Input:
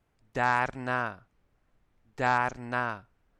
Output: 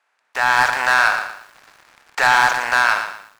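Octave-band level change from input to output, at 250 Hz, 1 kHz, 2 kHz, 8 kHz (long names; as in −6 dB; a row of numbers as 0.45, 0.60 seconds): −2.5 dB, +11.5 dB, +16.0 dB, can't be measured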